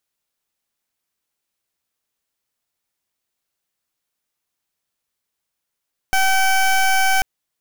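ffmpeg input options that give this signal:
-f lavfi -i "aevalsrc='0.168*(2*lt(mod(766*t,1),0.19)-1)':d=1.09:s=44100"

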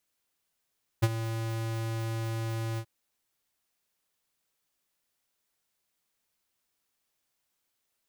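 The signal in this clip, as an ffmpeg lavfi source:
-f lavfi -i "aevalsrc='0.1*(2*lt(mod(113*t,1),0.5)-1)':d=1.829:s=44100,afade=t=in:d=0.016,afade=t=out:st=0.016:d=0.041:silence=0.237,afade=t=out:st=1.76:d=0.069"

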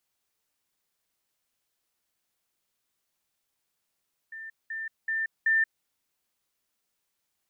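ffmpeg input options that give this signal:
-f lavfi -i "aevalsrc='pow(10,(-38+6*floor(t/0.38))/20)*sin(2*PI*1790*t)*clip(min(mod(t,0.38),0.18-mod(t,0.38))/0.005,0,1)':d=1.52:s=44100"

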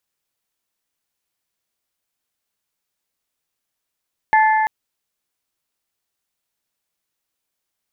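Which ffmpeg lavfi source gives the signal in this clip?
-f lavfi -i "aevalsrc='0.299*pow(10,-3*t/3.36)*sin(2*PI*871*t)+0.15*pow(10,-3*t/2.729)*sin(2*PI*1742*t)+0.075*pow(10,-3*t/2.584)*sin(2*PI*2090.4*t)':d=0.34:s=44100"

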